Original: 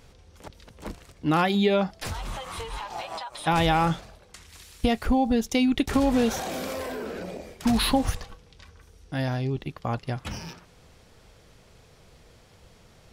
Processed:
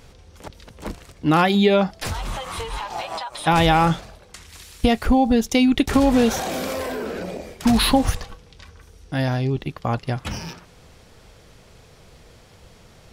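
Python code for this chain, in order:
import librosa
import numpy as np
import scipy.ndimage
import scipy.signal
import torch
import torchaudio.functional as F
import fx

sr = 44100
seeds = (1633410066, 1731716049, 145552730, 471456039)

y = x * 10.0 ** (5.5 / 20.0)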